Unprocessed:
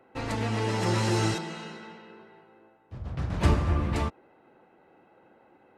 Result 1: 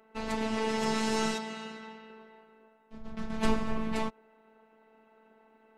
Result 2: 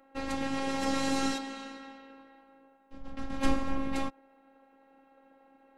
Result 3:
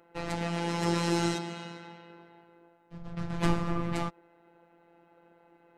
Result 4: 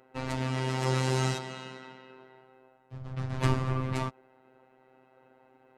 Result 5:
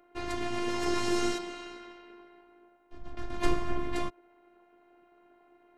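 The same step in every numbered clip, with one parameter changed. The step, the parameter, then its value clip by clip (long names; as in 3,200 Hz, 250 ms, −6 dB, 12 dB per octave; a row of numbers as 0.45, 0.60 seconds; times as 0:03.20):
phases set to zero, frequency: 220, 270, 170, 130, 350 Hertz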